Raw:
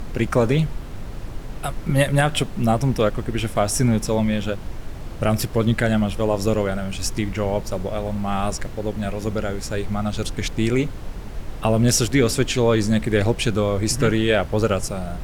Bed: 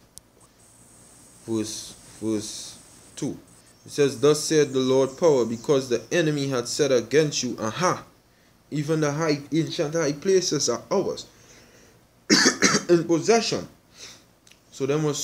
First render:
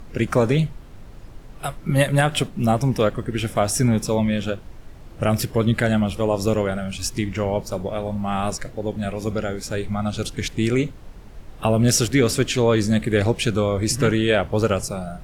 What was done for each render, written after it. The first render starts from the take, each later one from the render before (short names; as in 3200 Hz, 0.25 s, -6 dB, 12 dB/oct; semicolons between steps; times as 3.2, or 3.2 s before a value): noise print and reduce 9 dB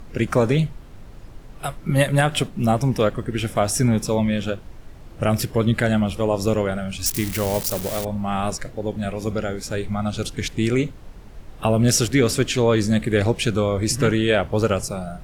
7.06–8.05 switching spikes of -16.5 dBFS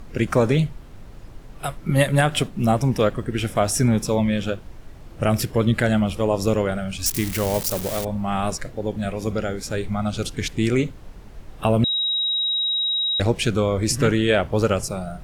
11.84–13.2 bleep 3820 Hz -19.5 dBFS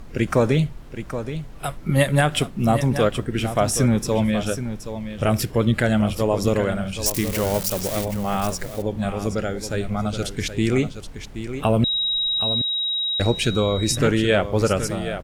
echo 0.774 s -10.5 dB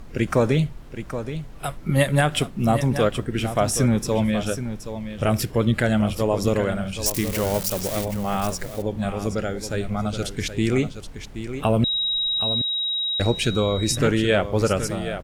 gain -1 dB